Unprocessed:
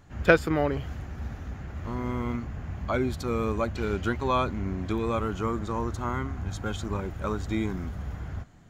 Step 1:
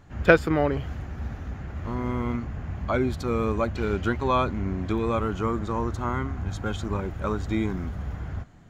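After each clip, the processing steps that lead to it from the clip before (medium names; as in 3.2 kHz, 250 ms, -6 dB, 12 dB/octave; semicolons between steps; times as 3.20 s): treble shelf 4.9 kHz -6 dB; trim +2.5 dB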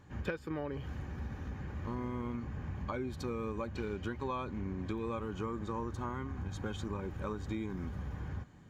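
compression 16:1, threshold -29 dBFS, peak gain reduction 19.5 dB; comb of notches 680 Hz; trim -3.5 dB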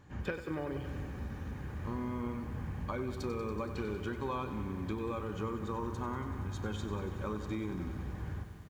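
speakerphone echo 170 ms, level -19 dB; reverberation, pre-delay 24 ms, DRR 15 dB; bit-crushed delay 94 ms, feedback 80%, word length 10-bit, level -11 dB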